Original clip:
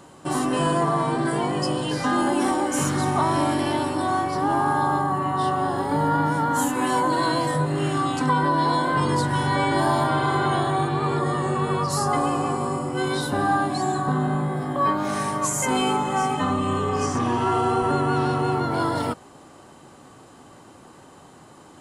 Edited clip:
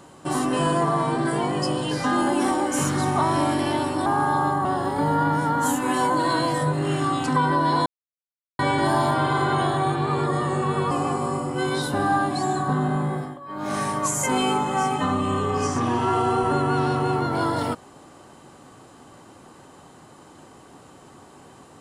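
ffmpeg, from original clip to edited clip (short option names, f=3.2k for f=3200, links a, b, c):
-filter_complex "[0:a]asplit=8[a][b][c][d][e][f][g][h];[a]atrim=end=4.062[i];[b]atrim=start=4.538:end=5.132[j];[c]atrim=start=5.578:end=8.79,asetpts=PTS-STARTPTS,afade=t=out:st=3.208:d=0.004:c=hsin[k];[d]atrim=start=8.79:end=9.52,asetpts=PTS-STARTPTS,volume=0[l];[e]atrim=start=9.52:end=11.842,asetpts=PTS-STARTPTS,afade=t=in:d=0.004:c=hsin[m];[f]atrim=start=12.298:end=14.79,asetpts=PTS-STARTPTS,afade=t=out:st=2.232:d=0.26:silence=0.105925[n];[g]atrim=start=14.79:end=14.87,asetpts=PTS-STARTPTS,volume=-19.5dB[o];[h]atrim=start=14.87,asetpts=PTS-STARTPTS,afade=t=in:d=0.26:silence=0.105925[p];[i][j]acrossfade=d=0.004:c1=hsin:c2=hsin[q];[k][l][m]concat=n=3:v=0:a=1[r];[q][r]acrossfade=d=0.004:c1=hsin:c2=hsin[s];[n][o][p]concat=n=3:v=0:a=1[t];[s][t]acrossfade=d=0.004:c1=hsin:c2=hsin"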